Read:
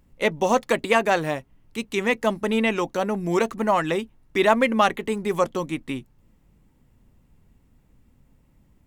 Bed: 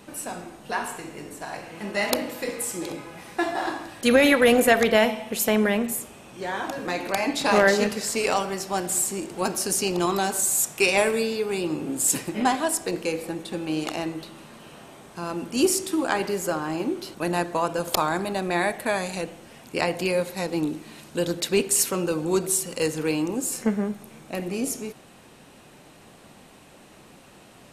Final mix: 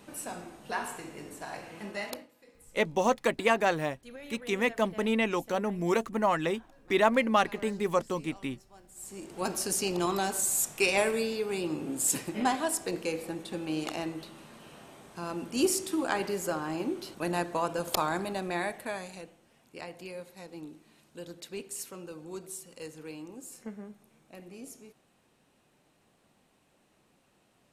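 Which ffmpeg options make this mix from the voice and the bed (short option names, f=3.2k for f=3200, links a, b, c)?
-filter_complex "[0:a]adelay=2550,volume=-5.5dB[a];[1:a]volume=18dB,afade=t=out:st=1.72:d=0.56:silence=0.0668344,afade=t=in:st=8.95:d=0.56:silence=0.0668344,afade=t=out:st=18.16:d=1.22:silence=0.237137[b];[a][b]amix=inputs=2:normalize=0"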